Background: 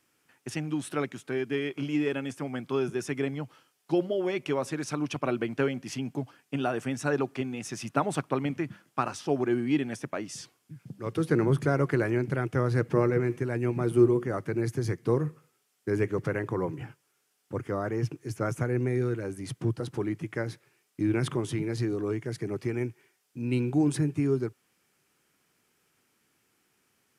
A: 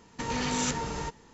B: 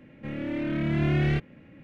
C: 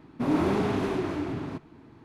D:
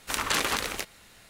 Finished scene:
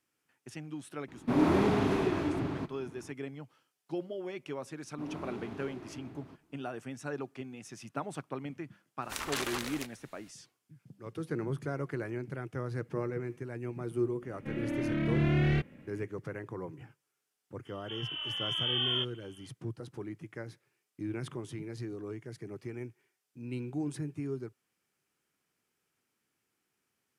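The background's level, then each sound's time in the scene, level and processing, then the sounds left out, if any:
background -10.5 dB
1.08 s: add C -1 dB
4.78 s: add C -17.5 dB
9.02 s: add D -9 dB
14.22 s: add B -3 dB
17.65 s: add B -8.5 dB + frequency inversion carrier 3.3 kHz
not used: A

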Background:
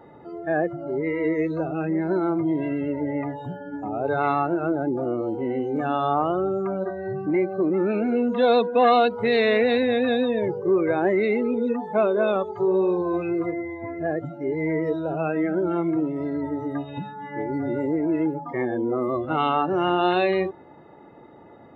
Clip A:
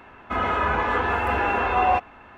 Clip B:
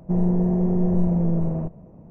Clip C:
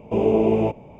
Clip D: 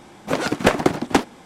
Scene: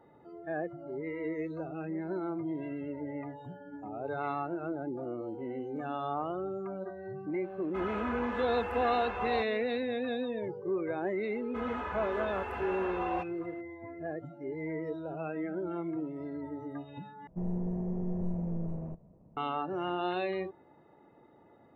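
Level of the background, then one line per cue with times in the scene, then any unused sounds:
background -12 dB
7.44 s: add A -14.5 dB
11.24 s: add A -15.5 dB
17.27 s: replace with B -13.5 dB
not used: C, D

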